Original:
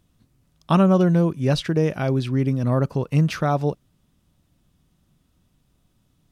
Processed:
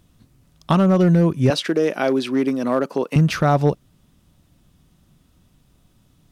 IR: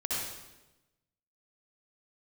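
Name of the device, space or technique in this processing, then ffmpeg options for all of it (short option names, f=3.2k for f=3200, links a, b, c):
limiter into clipper: -filter_complex "[0:a]alimiter=limit=-13dB:level=0:latency=1:release=274,asoftclip=type=hard:threshold=-15dB,asettb=1/sr,asplit=3[a][b][c];[a]atrim=end=1.504[d];[b]atrim=start=1.5:end=3.16,asetpts=PTS-STARTPTS,afade=t=in:d=0.004:c=qsin,afade=t=out:st=1.656:d=0.004:c=qsin,highpass=f=250:w=0.5412,highpass=f=250:w=1.3066[e];[c]atrim=start=3.156[f];[d][e]acrossfade=d=0.004:c1=hsin:c2=qsin[g];[g][f]acrossfade=d=0.004:c1=qsin:c2=hsin,volume=7dB"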